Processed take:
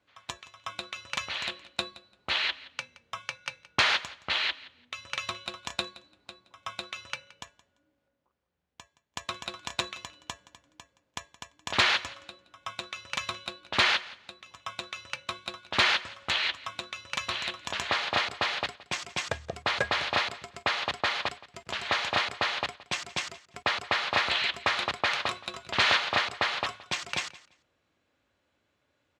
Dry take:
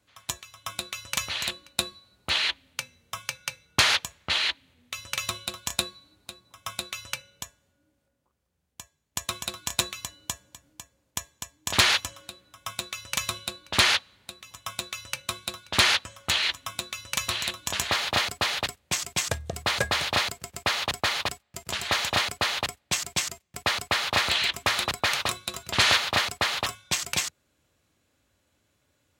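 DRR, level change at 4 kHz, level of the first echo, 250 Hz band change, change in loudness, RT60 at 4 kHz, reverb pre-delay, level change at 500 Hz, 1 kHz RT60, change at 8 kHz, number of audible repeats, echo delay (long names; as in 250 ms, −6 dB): no reverb audible, −4.0 dB, −19.5 dB, −4.0 dB, −3.0 dB, no reverb audible, no reverb audible, −1.5 dB, no reverb audible, −12.0 dB, 2, 171 ms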